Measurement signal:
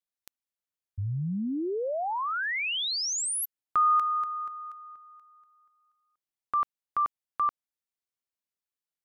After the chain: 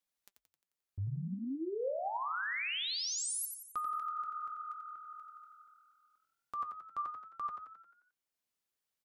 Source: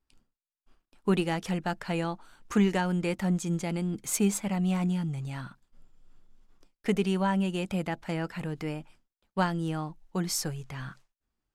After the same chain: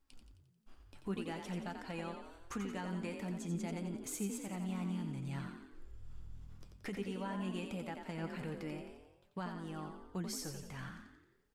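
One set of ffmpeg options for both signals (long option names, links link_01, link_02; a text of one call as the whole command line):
ffmpeg -i in.wav -filter_complex "[0:a]acompressor=threshold=-42dB:ratio=4:attack=0.28:release=722:knee=6:detection=rms,flanger=delay=3.6:depth=6.8:regen=62:speed=0.51:shape=sinusoidal,asplit=2[link_01][link_02];[link_02]asplit=7[link_03][link_04][link_05][link_06][link_07][link_08][link_09];[link_03]adelay=88,afreqshift=41,volume=-6.5dB[link_10];[link_04]adelay=176,afreqshift=82,volume=-12dB[link_11];[link_05]adelay=264,afreqshift=123,volume=-17.5dB[link_12];[link_06]adelay=352,afreqshift=164,volume=-23dB[link_13];[link_07]adelay=440,afreqshift=205,volume=-28.6dB[link_14];[link_08]adelay=528,afreqshift=246,volume=-34.1dB[link_15];[link_09]adelay=616,afreqshift=287,volume=-39.6dB[link_16];[link_10][link_11][link_12][link_13][link_14][link_15][link_16]amix=inputs=7:normalize=0[link_17];[link_01][link_17]amix=inputs=2:normalize=0,volume=7.5dB" out.wav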